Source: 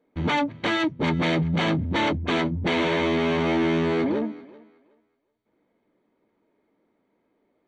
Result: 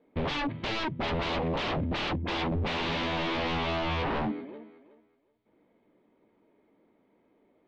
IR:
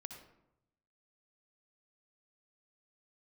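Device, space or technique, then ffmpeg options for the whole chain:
synthesiser wavefolder: -filter_complex "[0:a]asettb=1/sr,asplit=3[link_01][link_02][link_03];[link_01]atrim=end=1.604[link_04];[link_02]atrim=start=1.6:end=2.52,asetpts=PTS-STARTPTS,afade=type=in:duration=0.004:curve=qsin,afade=type=out:start_time=0.916:duration=0.004:curve=qsin,highpass=frequency=180:poles=1[link_05];[link_03]atrim=start=2.516[link_06];[link_04][link_05]acrossfade=duration=0.004:curve1=hsin:curve2=qsin[link_07];[link_07][link_06]acrossfade=duration=0.004:curve1=qsin:curve2=hsin,aeval=exprs='0.0422*(abs(mod(val(0)/0.0422+3,4)-2)-1)':channel_layout=same,lowpass=frequency=3700:width=0.5412,lowpass=frequency=3700:width=1.3066,equalizer=frequency=1500:width_type=o:width=0.89:gain=-3.5,volume=3.5dB"

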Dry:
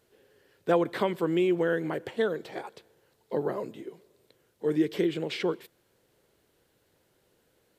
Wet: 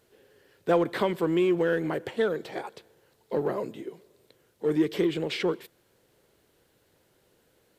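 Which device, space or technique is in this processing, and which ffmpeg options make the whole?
parallel distortion: -filter_complex "[0:a]asplit=2[link_01][link_02];[link_02]asoftclip=type=hard:threshold=-29.5dB,volume=-8.5dB[link_03];[link_01][link_03]amix=inputs=2:normalize=0"

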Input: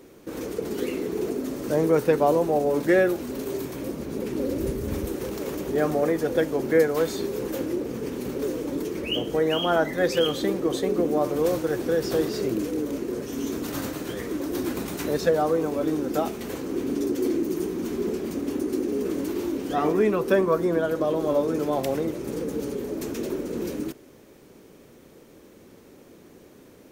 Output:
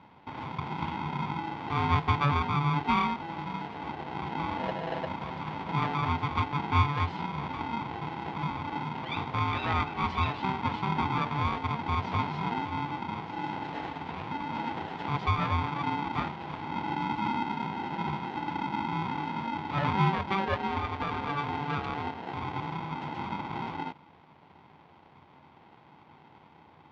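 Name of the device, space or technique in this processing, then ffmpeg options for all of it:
ring modulator pedal into a guitar cabinet: -filter_complex "[0:a]asettb=1/sr,asplit=3[link_01][link_02][link_03];[link_01]atrim=end=20.214[link_04];[link_02]atrim=start=20.21:end=22.34,asetpts=PTS-STARTPTS,afade=type=in:duration=0.004:curve=qsin,afade=type=out:start_time=2.126:duration=0.004:curve=qsin,aecho=1:1:1.1:0.45,atrim=end_sample=93933[link_05];[link_03]atrim=start=22.336[link_06];[link_04][link_05]acrossfade=duration=0.004:curve1=hsin:curve2=qsin[link_07];[link_07][link_06]acrossfade=duration=0.004:curve1=qsin:curve2=hsin,aeval=exprs='val(0)*sgn(sin(2*PI*580*n/s))':channel_layout=same,highpass=84,equalizer=frequency=87:width_type=q:width=4:gain=9,equalizer=frequency=150:width_type=q:width=4:gain=8,equalizer=frequency=580:width_type=q:width=4:gain=6,equalizer=frequency=840:width_type=q:width=4:gain=4,lowpass=frequency=3500:width=0.5412,lowpass=frequency=3500:width=1.3066,volume=-7.5dB"

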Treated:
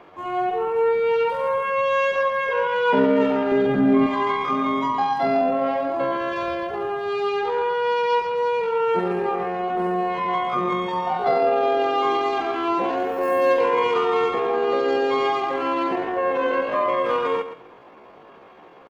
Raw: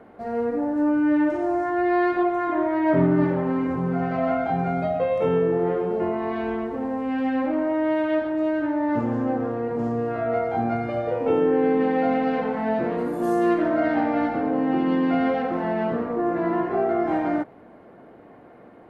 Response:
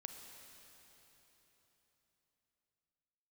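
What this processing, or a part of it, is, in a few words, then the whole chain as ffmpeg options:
chipmunk voice: -filter_complex "[0:a]asettb=1/sr,asplit=3[link_01][link_02][link_03];[link_01]atrim=end=3.524[link_04];[link_02]atrim=start=3.52:end=4.07,asetpts=PTS-STARTPTS,afade=type=in:duration=0.004:curve=qsin,afade=type=out:start_time=0.546:duration=0.004:curve=qsin,bass=frequency=250:gain=10,treble=frequency=4000:gain=-1[link_05];[link_03]atrim=start=4.066[link_06];[link_04][link_05]acrossfade=duration=0.004:curve1=hsin:curve2=qsin[link_07];[link_07][link_06]acrossfade=duration=0.004:curve1=qsin:curve2=hsin,aecho=1:1:132|264|396:0.251|0.0502|0.01,asetrate=68011,aresample=44100,atempo=0.64842,volume=1dB"

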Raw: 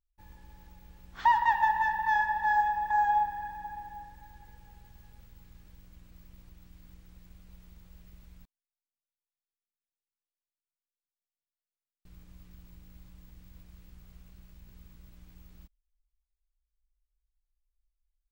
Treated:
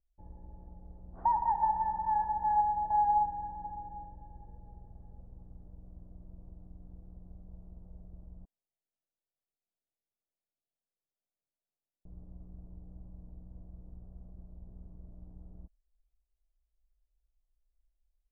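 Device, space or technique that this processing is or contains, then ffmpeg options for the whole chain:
under water: -af "lowpass=frequency=740:width=0.5412,lowpass=frequency=740:width=1.3066,equalizer=frequency=660:width_type=o:width=0.37:gain=5,volume=3.5dB"

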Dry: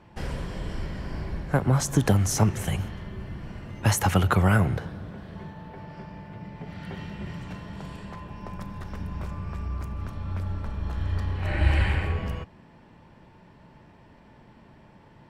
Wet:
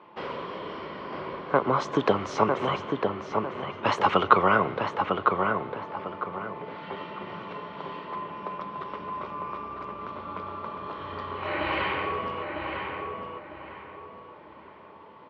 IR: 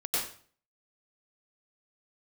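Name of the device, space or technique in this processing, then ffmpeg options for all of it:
phone earpiece: -filter_complex "[0:a]highpass=410,equalizer=frequency=420:width_type=q:width=4:gain=3,equalizer=frequency=760:width_type=q:width=4:gain=-5,equalizer=frequency=1100:width_type=q:width=4:gain=8,equalizer=frequency=1700:width_type=q:width=4:gain=-9,equalizer=frequency=2600:width_type=q:width=4:gain=-3,lowpass=frequency=3400:width=0.5412,lowpass=frequency=3400:width=1.3066,asplit=2[link_01][link_02];[link_02]adelay=952,lowpass=frequency=2400:poles=1,volume=-4dB,asplit=2[link_03][link_04];[link_04]adelay=952,lowpass=frequency=2400:poles=1,volume=0.35,asplit=2[link_05][link_06];[link_06]adelay=952,lowpass=frequency=2400:poles=1,volume=0.35,asplit=2[link_07][link_08];[link_08]adelay=952,lowpass=frequency=2400:poles=1,volume=0.35[link_09];[link_01][link_03][link_05][link_07][link_09]amix=inputs=5:normalize=0,volume=5.5dB"

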